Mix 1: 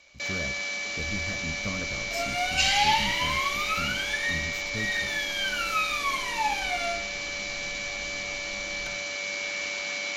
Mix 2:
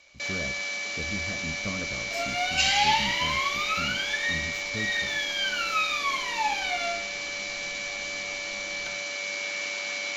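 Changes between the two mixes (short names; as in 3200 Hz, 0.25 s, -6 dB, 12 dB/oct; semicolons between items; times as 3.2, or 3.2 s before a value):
speech: add tilt -1.5 dB/oct; second sound: add resonant high shelf 5900 Hz -6.5 dB, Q 3; master: add low shelf 130 Hz -10.5 dB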